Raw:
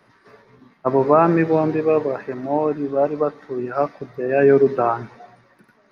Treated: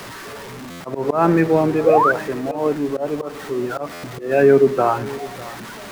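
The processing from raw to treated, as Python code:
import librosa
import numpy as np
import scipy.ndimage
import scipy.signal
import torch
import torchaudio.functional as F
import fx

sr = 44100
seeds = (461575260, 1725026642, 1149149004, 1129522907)

p1 = x + 0.5 * 10.0 ** (-30.5 / 20.0) * np.sign(x)
p2 = fx.auto_swell(p1, sr, attack_ms=149.0)
p3 = p2 + fx.echo_single(p2, sr, ms=604, db=-18.0, dry=0)
p4 = fx.spec_paint(p3, sr, seeds[0], shape='rise', start_s=1.84, length_s=0.28, low_hz=440.0, high_hz=1600.0, level_db=-16.0)
p5 = fx.buffer_glitch(p4, sr, at_s=(0.7, 3.93), block=512, repeats=8)
y = p5 * 10.0 ** (1.0 / 20.0)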